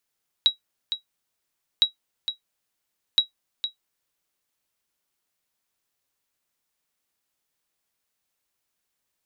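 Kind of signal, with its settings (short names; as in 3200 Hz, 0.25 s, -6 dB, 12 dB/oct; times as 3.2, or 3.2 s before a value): sonar ping 3860 Hz, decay 0.12 s, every 1.36 s, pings 3, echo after 0.46 s, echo -9.5 dB -8.5 dBFS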